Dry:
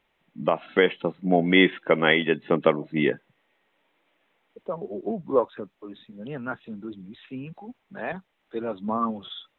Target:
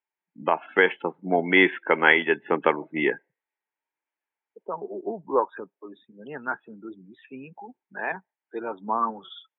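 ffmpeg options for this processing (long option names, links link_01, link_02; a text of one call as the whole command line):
ffmpeg -i in.wav -af "afftdn=noise_reduction=25:noise_floor=-46,highpass=230,equalizer=frequency=230:width_type=q:width=4:gain=-4,equalizer=frequency=390:width_type=q:width=4:gain=3,equalizer=frequency=550:width_type=q:width=4:gain=-4,equalizer=frequency=900:width_type=q:width=4:gain=10,equalizer=frequency=1600:width_type=q:width=4:gain=9,equalizer=frequency=2300:width_type=q:width=4:gain=4,lowpass=frequency=3300:width=0.5412,lowpass=frequency=3300:width=1.3066,volume=-1.5dB" out.wav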